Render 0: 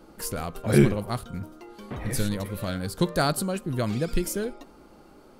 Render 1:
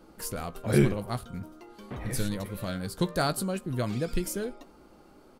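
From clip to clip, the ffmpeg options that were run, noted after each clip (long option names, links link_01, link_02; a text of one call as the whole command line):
ffmpeg -i in.wav -filter_complex "[0:a]asplit=2[link_01][link_02];[link_02]adelay=16,volume=-13.5dB[link_03];[link_01][link_03]amix=inputs=2:normalize=0,volume=-3.5dB" out.wav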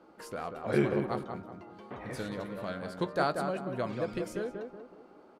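ffmpeg -i in.wav -filter_complex "[0:a]bandpass=frequency=860:width_type=q:width=0.51:csg=0,asplit=2[link_01][link_02];[link_02]adelay=186,lowpass=frequency=1600:poles=1,volume=-5dB,asplit=2[link_03][link_04];[link_04]adelay=186,lowpass=frequency=1600:poles=1,volume=0.41,asplit=2[link_05][link_06];[link_06]adelay=186,lowpass=frequency=1600:poles=1,volume=0.41,asplit=2[link_07][link_08];[link_08]adelay=186,lowpass=frequency=1600:poles=1,volume=0.41,asplit=2[link_09][link_10];[link_10]adelay=186,lowpass=frequency=1600:poles=1,volume=0.41[link_11];[link_01][link_03][link_05][link_07][link_09][link_11]amix=inputs=6:normalize=0" out.wav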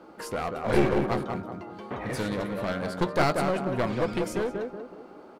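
ffmpeg -i in.wav -af "aeval=exprs='clip(val(0),-1,0.0158)':channel_layout=same,volume=8.5dB" out.wav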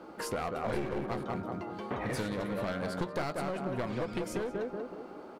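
ffmpeg -i in.wav -af "acompressor=threshold=-32dB:ratio=5,volume=1dB" out.wav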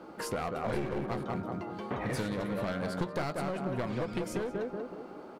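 ffmpeg -i in.wav -af "equalizer=frequency=150:width_type=o:width=0.9:gain=3" out.wav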